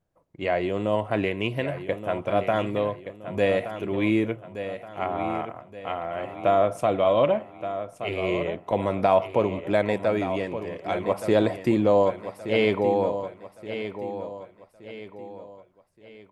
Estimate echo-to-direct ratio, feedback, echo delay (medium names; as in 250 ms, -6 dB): -9.5 dB, 40%, 1173 ms